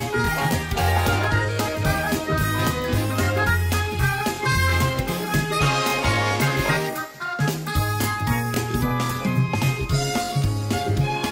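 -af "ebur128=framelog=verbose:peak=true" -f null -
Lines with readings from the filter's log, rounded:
Integrated loudness:
  I:         -22.2 LUFS
  Threshold: -32.2 LUFS
Loudness range:
  LRA:         2.0 LU
  Threshold: -42.1 LUFS
  LRA low:   -23.2 LUFS
  LRA high:  -21.2 LUFS
True peak:
  Peak:       -8.7 dBFS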